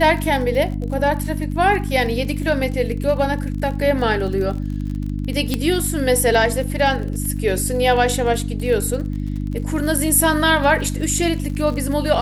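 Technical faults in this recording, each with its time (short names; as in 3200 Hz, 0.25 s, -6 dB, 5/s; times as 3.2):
crackle 41/s -28 dBFS
hum 50 Hz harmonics 6 -24 dBFS
5.54 pop -6 dBFS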